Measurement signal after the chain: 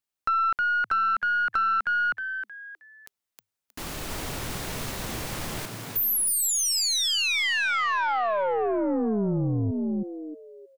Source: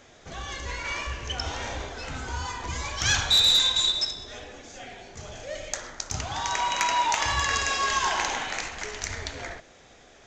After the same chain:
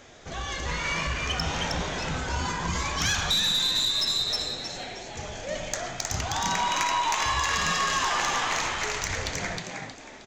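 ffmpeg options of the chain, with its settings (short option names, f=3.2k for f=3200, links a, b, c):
-filter_complex "[0:a]asplit=5[a][b][c][d][e];[b]adelay=314,afreqshift=100,volume=-4dB[f];[c]adelay=628,afreqshift=200,volume=-13.9dB[g];[d]adelay=942,afreqshift=300,volume=-23.8dB[h];[e]adelay=1256,afreqshift=400,volume=-33.7dB[i];[a][f][g][h][i]amix=inputs=5:normalize=0,acompressor=threshold=-24dB:ratio=6,aeval=exprs='0.224*(cos(1*acos(clip(val(0)/0.224,-1,1)))-cos(1*PI/2))+0.0501*(cos(2*acos(clip(val(0)/0.224,-1,1)))-cos(2*PI/2))+0.0224*(cos(4*acos(clip(val(0)/0.224,-1,1)))-cos(4*PI/2))+0.0178*(cos(5*acos(clip(val(0)/0.224,-1,1)))-cos(5*PI/2))+0.0126*(cos(6*acos(clip(val(0)/0.224,-1,1)))-cos(6*PI/2))':c=same"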